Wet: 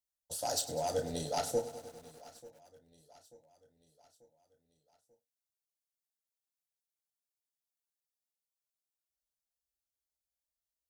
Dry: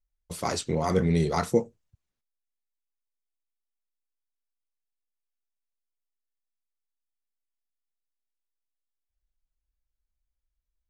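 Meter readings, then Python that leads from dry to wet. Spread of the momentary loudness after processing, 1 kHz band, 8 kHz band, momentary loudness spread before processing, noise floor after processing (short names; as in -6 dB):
20 LU, -6.0 dB, +0.5 dB, 13 LU, under -85 dBFS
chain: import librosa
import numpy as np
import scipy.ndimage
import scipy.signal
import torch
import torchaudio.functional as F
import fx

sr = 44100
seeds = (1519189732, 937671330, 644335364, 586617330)

p1 = fx.tracing_dist(x, sr, depth_ms=0.023)
p2 = scipy.signal.sosfilt(scipy.signal.butter(2, 200.0, 'highpass', fs=sr, output='sos'), p1)
p3 = fx.level_steps(p2, sr, step_db=13)
p4 = p2 + (p3 * 10.0 ** (-2.0 / 20.0))
p5 = fx.fixed_phaser(p4, sr, hz=920.0, stages=4)
p6 = 10.0 ** (-18.5 / 20.0) * np.tanh(p5 / 10.0 ** (-18.5 / 20.0))
p7 = fx.fixed_phaser(p6, sr, hz=460.0, stages=4)
p8 = fx.doubler(p7, sr, ms=32.0, db=-10.5)
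p9 = fx.echo_feedback(p8, sr, ms=889, feedback_pct=50, wet_db=-21)
y = fx.echo_crushed(p9, sr, ms=100, feedback_pct=80, bits=9, wet_db=-15.0)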